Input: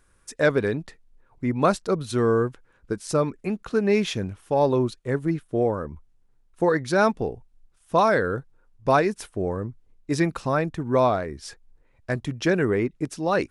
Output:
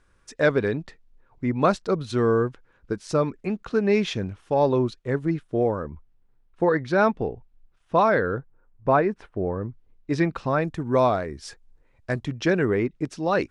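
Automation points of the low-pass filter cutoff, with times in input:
5,700 Hz
from 0:05.90 3,300 Hz
from 0:08.38 1,800 Hz
from 0:09.61 4,000 Hz
from 0:10.62 9,400 Hz
from 0:12.24 5,900 Hz

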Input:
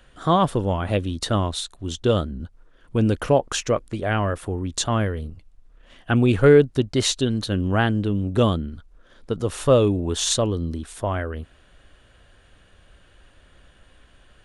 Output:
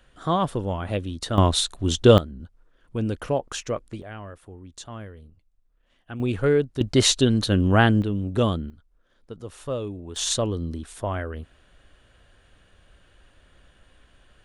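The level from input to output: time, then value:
−4.5 dB
from 0:01.38 +6 dB
from 0:02.18 −6.5 dB
from 0:04.02 −16 dB
from 0:06.20 −7 dB
from 0:06.81 +3 dB
from 0:08.02 −3 dB
from 0:08.70 −13 dB
from 0:10.16 −3 dB

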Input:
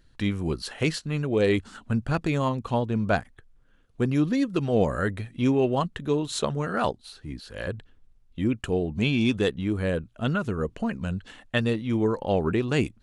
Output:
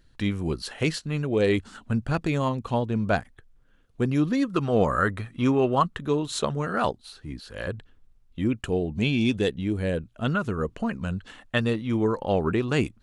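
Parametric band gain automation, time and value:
parametric band 1,200 Hz 0.65 octaves
0:04.13 −0.5 dB
0:04.58 +10.5 dB
0:05.80 +10.5 dB
0:06.25 +2 dB
0:08.42 +2 dB
0:09.38 −8 dB
0:09.88 −8 dB
0:10.30 +3.5 dB

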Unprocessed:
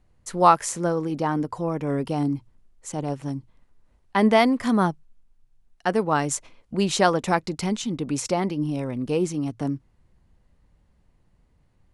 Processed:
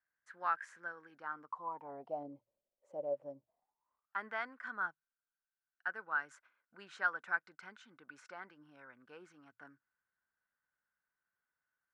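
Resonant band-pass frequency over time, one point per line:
resonant band-pass, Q 12
0:01.15 1,600 Hz
0:02.30 570 Hz
0:03.37 570 Hz
0:04.22 1,500 Hz

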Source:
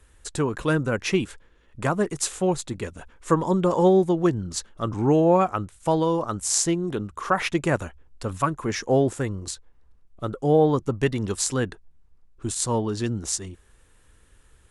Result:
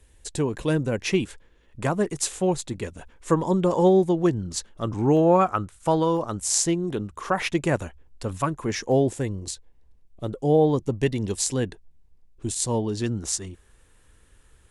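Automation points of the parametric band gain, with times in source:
parametric band 1,300 Hz 0.6 octaves
−11.5 dB
from 0:01.05 −5 dB
from 0:05.17 +3 dB
from 0:06.17 −5 dB
from 0:08.92 −12 dB
from 0:13.02 −1 dB

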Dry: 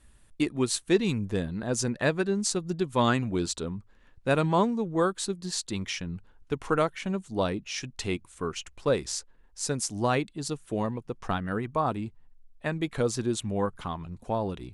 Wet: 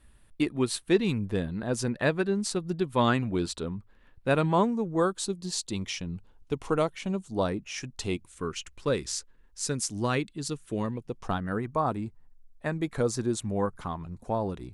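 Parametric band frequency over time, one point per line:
parametric band −7.5 dB 0.74 octaves
0:04.40 6,700 Hz
0:05.33 1,600 Hz
0:07.13 1,600 Hz
0:07.73 4,400 Hz
0:08.43 720 Hz
0:10.87 720 Hz
0:11.47 3,000 Hz

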